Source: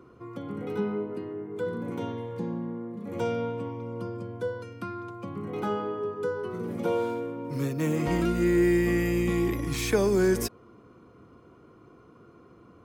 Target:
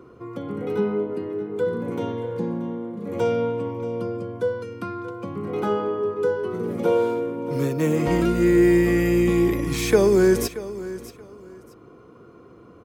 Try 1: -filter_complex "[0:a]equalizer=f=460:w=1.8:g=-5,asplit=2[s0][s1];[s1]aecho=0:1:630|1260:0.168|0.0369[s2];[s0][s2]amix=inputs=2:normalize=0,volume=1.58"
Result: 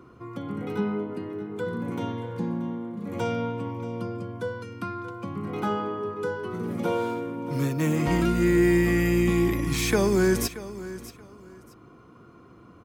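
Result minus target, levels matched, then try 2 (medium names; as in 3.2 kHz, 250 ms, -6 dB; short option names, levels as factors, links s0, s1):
500 Hz band -2.5 dB
-filter_complex "[0:a]equalizer=f=460:w=1.8:g=4,asplit=2[s0][s1];[s1]aecho=0:1:630|1260:0.168|0.0369[s2];[s0][s2]amix=inputs=2:normalize=0,volume=1.58"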